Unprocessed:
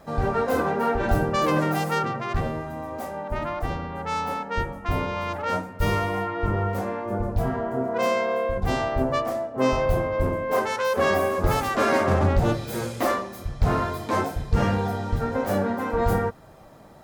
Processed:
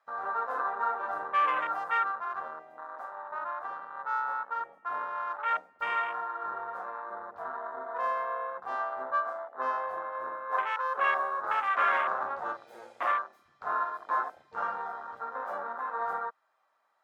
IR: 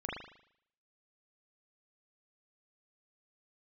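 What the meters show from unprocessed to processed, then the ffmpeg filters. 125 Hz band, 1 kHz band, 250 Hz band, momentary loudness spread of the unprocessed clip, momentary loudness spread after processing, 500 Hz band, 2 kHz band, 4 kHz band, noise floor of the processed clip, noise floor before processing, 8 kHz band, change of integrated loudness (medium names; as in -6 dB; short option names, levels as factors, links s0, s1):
under -40 dB, -2.5 dB, -28.5 dB, 7 LU, 12 LU, -15.0 dB, -3.5 dB, -12.5 dB, -67 dBFS, -41 dBFS, under -25 dB, -7.0 dB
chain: -af "aemphasis=mode=reproduction:type=50kf,afwtdn=0.0398,highpass=f=1200:t=q:w=1.7,volume=0.708"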